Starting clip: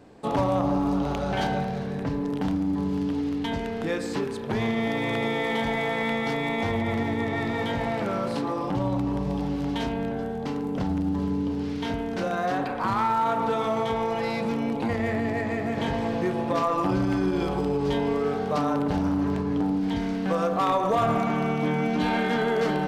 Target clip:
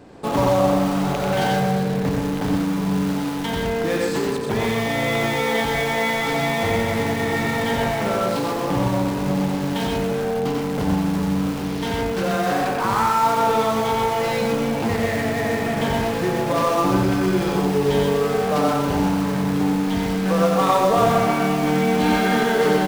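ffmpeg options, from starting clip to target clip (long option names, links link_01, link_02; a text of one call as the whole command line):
ffmpeg -i in.wav -filter_complex "[0:a]asplit=2[link_01][link_02];[link_02]aeval=exprs='(mod(18.8*val(0)+1,2)-1)/18.8':channel_layout=same,volume=-10.5dB[link_03];[link_01][link_03]amix=inputs=2:normalize=0,aecho=1:1:90|127:0.631|0.562,volume=3.5dB" out.wav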